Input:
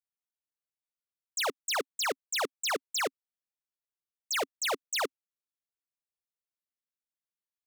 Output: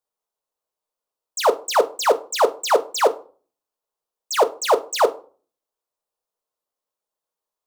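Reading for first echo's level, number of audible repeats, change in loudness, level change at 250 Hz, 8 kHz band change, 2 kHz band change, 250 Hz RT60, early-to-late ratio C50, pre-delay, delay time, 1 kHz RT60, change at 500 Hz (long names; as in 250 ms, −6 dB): no echo audible, no echo audible, +11.5 dB, +10.0 dB, +6.0 dB, +4.0 dB, 0.50 s, 18.5 dB, 5 ms, no echo audible, 0.40 s, +17.5 dB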